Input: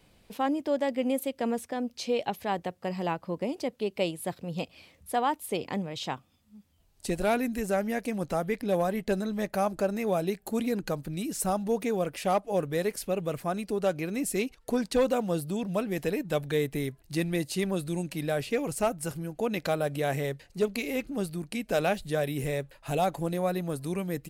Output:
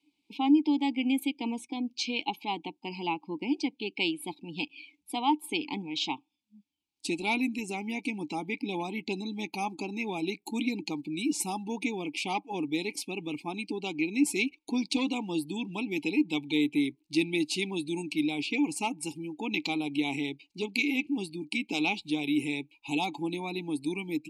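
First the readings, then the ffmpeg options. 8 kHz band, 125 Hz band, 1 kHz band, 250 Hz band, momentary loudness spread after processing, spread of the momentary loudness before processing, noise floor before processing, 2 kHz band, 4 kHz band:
-1.0 dB, -8.5 dB, -2.5 dB, +2.5 dB, 8 LU, 6 LU, -63 dBFS, +3.5 dB, +6.0 dB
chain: -filter_complex "[0:a]aexciter=amount=13.8:drive=2.6:freq=2700,asplit=2[s0][s1];[s1]acrusher=bits=4:mode=log:mix=0:aa=0.000001,volume=0.299[s2];[s0][s2]amix=inputs=2:normalize=0,asplit=3[s3][s4][s5];[s3]bandpass=f=300:t=q:w=8,volume=1[s6];[s4]bandpass=f=870:t=q:w=8,volume=0.501[s7];[s5]bandpass=f=2240:t=q:w=8,volume=0.355[s8];[s6][s7][s8]amix=inputs=3:normalize=0,afftdn=nr=18:nf=-54,volume=2.37"

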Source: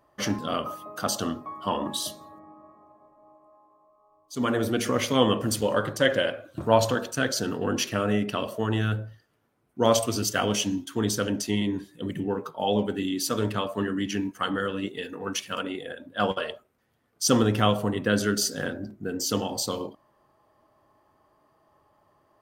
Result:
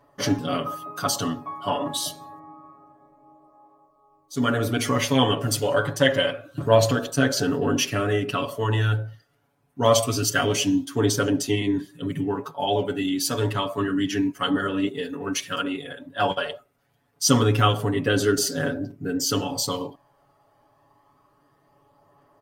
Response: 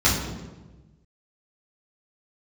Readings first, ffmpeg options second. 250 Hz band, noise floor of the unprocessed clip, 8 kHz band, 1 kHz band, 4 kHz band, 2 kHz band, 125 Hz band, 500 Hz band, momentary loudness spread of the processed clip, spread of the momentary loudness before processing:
+2.5 dB, -67 dBFS, +3.0 dB, +3.0 dB, +3.5 dB, +3.0 dB, +5.5 dB, +2.5 dB, 10 LU, 11 LU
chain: -af "aecho=1:1:7.1:0.99,aphaser=in_gain=1:out_gain=1:delay=1.5:decay=0.29:speed=0.27:type=triangular"

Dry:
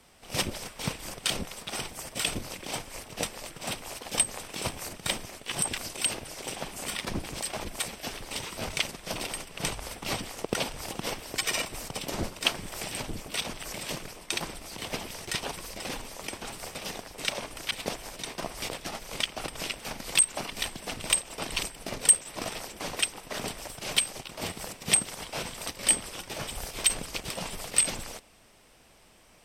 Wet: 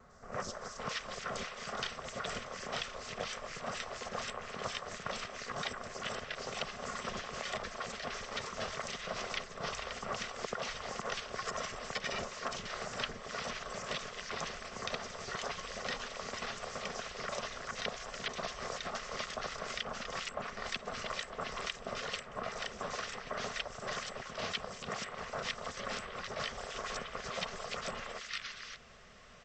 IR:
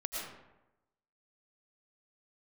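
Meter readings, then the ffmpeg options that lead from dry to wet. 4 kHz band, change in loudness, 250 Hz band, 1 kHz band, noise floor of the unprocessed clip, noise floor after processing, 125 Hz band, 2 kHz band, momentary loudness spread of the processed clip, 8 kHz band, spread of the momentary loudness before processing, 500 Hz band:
-8.5 dB, -9.0 dB, -8.5 dB, -1.0 dB, -54 dBFS, -49 dBFS, -8.5 dB, -4.0 dB, 2 LU, -17.5 dB, 12 LU, -2.5 dB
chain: -filter_complex "[0:a]superequalizer=6b=0.251:9b=0.631:10b=2.24:11b=2,acrossover=split=1500|5400[s0][s1][s2];[s2]adelay=100[s3];[s1]adelay=570[s4];[s0][s4][s3]amix=inputs=3:normalize=0,acrossover=split=240|530|1400|3400[s5][s6][s7][s8][s9];[s5]acompressor=threshold=0.00224:ratio=4[s10];[s6]acompressor=threshold=0.00282:ratio=4[s11];[s7]acompressor=threshold=0.01:ratio=4[s12];[s8]acompressor=threshold=0.00316:ratio=4[s13];[s9]acompressor=threshold=0.00631:ratio=4[s14];[s10][s11][s12][s13][s14]amix=inputs=5:normalize=0,volume=1.19" -ar 16000 -c:a pcm_alaw

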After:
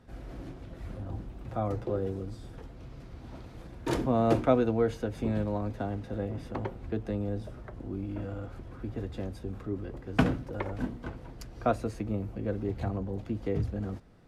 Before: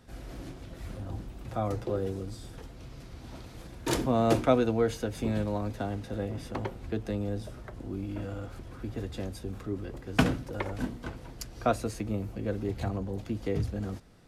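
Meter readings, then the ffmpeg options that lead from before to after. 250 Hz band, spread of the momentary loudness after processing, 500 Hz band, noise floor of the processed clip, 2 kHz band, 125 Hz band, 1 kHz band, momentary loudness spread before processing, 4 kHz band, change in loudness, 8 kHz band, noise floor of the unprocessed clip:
0.0 dB, 17 LU, -0.5 dB, -47 dBFS, -3.0 dB, 0.0 dB, -1.0 dB, 17 LU, -6.5 dB, -0.5 dB, no reading, -47 dBFS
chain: -af "highshelf=f=3200:g=-11.5"

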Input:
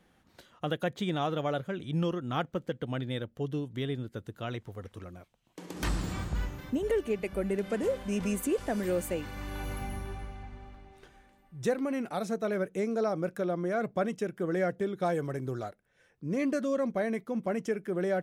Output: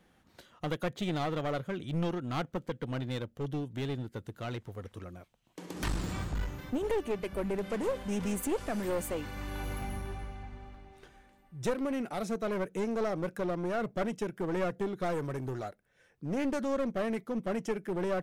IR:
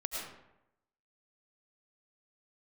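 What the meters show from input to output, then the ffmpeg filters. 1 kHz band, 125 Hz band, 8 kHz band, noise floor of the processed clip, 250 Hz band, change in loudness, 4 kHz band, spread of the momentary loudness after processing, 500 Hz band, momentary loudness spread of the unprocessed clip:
-1.0 dB, -1.0 dB, -0.5 dB, -67 dBFS, -2.0 dB, -2.0 dB, -1.5 dB, 12 LU, -2.5 dB, 11 LU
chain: -af "aeval=exprs='clip(val(0),-1,0.0237)':c=same"

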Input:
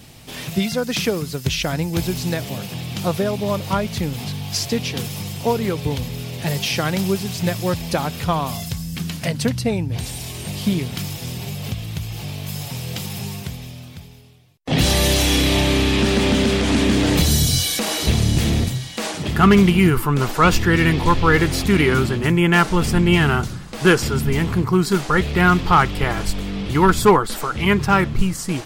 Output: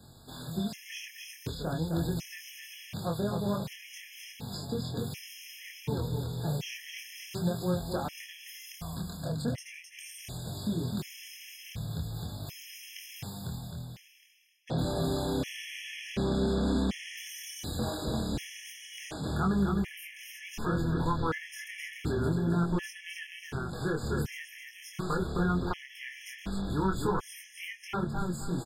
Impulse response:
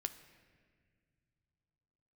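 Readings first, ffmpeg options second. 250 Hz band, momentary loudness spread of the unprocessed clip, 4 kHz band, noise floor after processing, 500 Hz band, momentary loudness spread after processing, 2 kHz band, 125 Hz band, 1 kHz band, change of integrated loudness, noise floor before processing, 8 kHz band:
-13.5 dB, 13 LU, -17.5 dB, -52 dBFS, -14.5 dB, 14 LU, -18.5 dB, -13.5 dB, -17.0 dB, -15.0 dB, -35 dBFS, -17.5 dB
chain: -filter_complex "[0:a]acrossover=split=180|1400[s0][s1][s2];[s0]acompressor=threshold=0.0708:ratio=4[s3];[s1]acompressor=threshold=0.1:ratio=4[s4];[s2]acompressor=threshold=0.0282:ratio=4[s5];[s3][s4][s5]amix=inputs=3:normalize=0,asoftclip=type=tanh:threshold=0.299,flanger=delay=22.5:depth=3.8:speed=0.39,asplit=2[s6][s7];[s7]aecho=0:1:261|522|783|1044:0.562|0.18|0.0576|0.0184[s8];[s6][s8]amix=inputs=2:normalize=0,afftfilt=real='re*gt(sin(2*PI*0.68*pts/sr)*(1-2*mod(floor(b*sr/1024/1700),2)),0)':imag='im*gt(sin(2*PI*0.68*pts/sr)*(1-2*mod(floor(b*sr/1024/1700),2)),0)':win_size=1024:overlap=0.75,volume=0.501"

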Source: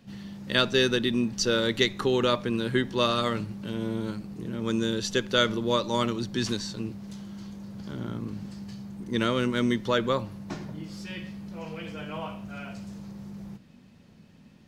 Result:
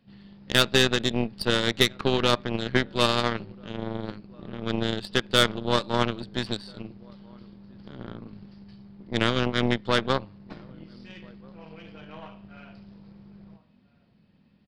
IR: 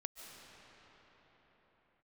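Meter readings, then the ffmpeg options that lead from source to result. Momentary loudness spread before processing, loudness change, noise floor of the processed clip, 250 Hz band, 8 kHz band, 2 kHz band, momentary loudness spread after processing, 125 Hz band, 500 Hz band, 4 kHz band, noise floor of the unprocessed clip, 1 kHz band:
16 LU, +3.0 dB, -61 dBFS, -1.5 dB, +1.0 dB, +3.0 dB, 22 LU, +1.5 dB, 0.0 dB, +3.0 dB, -54 dBFS, +2.0 dB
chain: -filter_complex "[0:a]asplit=2[s0][s1];[s1]adelay=1341,volume=0.112,highshelf=f=4000:g=-30.2[s2];[s0][s2]amix=inputs=2:normalize=0,aresample=11025,aresample=44100,aeval=exprs='0.473*(cos(1*acos(clip(val(0)/0.473,-1,1)))-cos(1*PI/2))+0.0211*(cos(3*acos(clip(val(0)/0.473,-1,1)))-cos(3*PI/2))+0.0335*(cos(5*acos(clip(val(0)/0.473,-1,1)))-cos(5*PI/2))+0.0668*(cos(7*acos(clip(val(0)/0.473,-1,1)))-cos(7*PI/2))+0.0211*(cos(8*acos(clip(val(0)/0.473,-1,1)))-cos(8*PI/2))':c=same,volume=1.58"

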